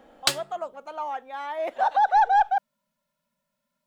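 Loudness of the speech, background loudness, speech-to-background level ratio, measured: −25.0 LKFS, −27.5 LKFS, 2.5 dB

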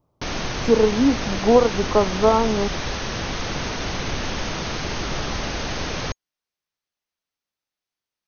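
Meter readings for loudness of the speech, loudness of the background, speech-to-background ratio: −19.5 LKFS, −27.0 LKFS, 7.5 dB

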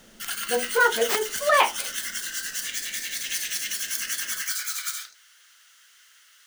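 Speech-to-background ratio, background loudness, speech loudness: 4.5 dB, −28.0 LKFS, −23.5 LKFS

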